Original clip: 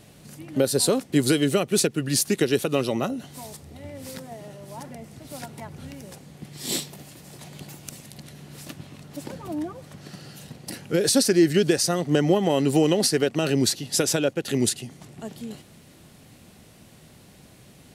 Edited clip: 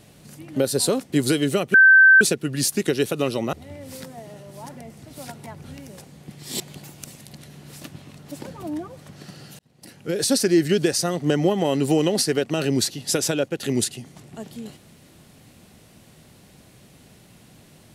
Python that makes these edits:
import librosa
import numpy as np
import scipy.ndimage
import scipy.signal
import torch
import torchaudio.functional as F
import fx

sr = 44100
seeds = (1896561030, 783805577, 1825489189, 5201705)

y = fx.edit(x, sr, fx.insert_tone(at_s=1.74, length_s=0.47, hz=1550.0, db=-8.0),
    fx.cut(start_s=3.06, length_s=0.61),
    fx.cut(start_s=6.74, length_s=0.71),
    fx.fade_in_span(start_s=10.44, length_s=0.79), tone=tone)